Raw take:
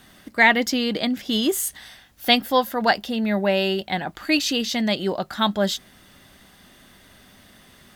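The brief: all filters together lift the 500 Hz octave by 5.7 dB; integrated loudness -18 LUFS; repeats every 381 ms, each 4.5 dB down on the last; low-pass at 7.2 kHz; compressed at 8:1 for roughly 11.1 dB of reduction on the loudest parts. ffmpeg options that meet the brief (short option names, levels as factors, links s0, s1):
-af "lowpass=7200,equalizer=f=500:t=o:g=7,acompressor=threshold=0.0891:ratio=8,aecho=1:1:381|762|1143|1524|1905|2286|2667|3048|3429:0.596|0.357|0.214|0.129|0.0772|0.0463|0.0278|0.0167|0.01,volume=2.24"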